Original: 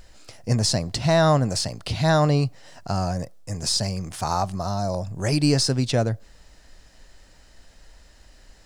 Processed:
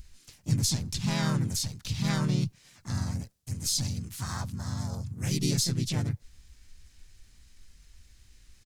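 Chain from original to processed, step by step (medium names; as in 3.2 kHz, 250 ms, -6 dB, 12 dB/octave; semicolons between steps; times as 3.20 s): harmony voices -3 st -5 dB, +4 st -1 dB, +7 st -8 dB; amplifier tone stack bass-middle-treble 6-0-2; trim +6.5 dB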